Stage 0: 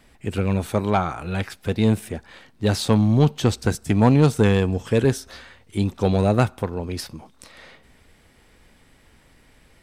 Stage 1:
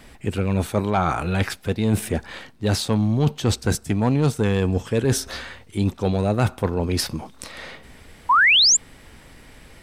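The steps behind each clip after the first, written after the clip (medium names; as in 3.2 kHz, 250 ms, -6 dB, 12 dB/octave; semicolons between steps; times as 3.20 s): reverse; compression 6:1, threshold -26 dBFS, peak gain reduction 14 dB; reverse; painted sound rise, 8.29–8.77 s, 920–7700 Hz -23 dBFS; trim +8.5 dB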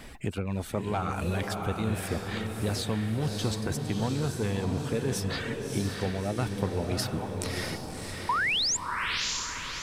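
reverb removal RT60 0.61 s; compression 4:1, threshold -30 dBFS, peak gain reduction 13.5 dB; echo that smears into a reverb 632 ms, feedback 49%, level -3.5 dB; trim +1 dB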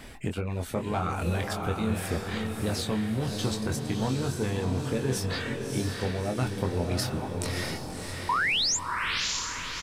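doubling 23 ms -5.5 dB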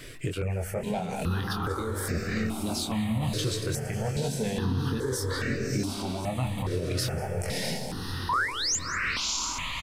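peak limiter -22 dBFS, peak gain reduction 8 dB; echo from a far wall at 33 m, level -12 dB; stepped phaser 2.4 Hz 220–3300 Hz; trim +4.5 dB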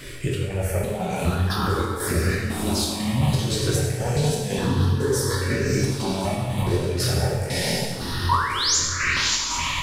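square tremolo 2 Hz, depth 60%, duty 70%; plate-style reverb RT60 1.2 s, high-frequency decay 0.95×, DRR -2 dB; trim +4 dB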